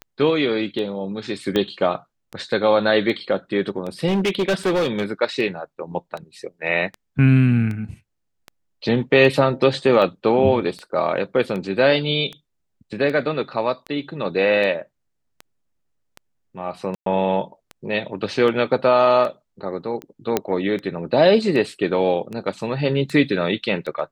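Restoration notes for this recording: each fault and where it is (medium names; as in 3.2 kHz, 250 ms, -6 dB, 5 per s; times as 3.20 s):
tick 78 rpm -19 dBFS
1.56 s: pop -9 dBFS
4.07–5.04 s: clipped -16 dBFS
16.95–17.06 s: dropout 113 ms
20.37 s: pop -5 dBFS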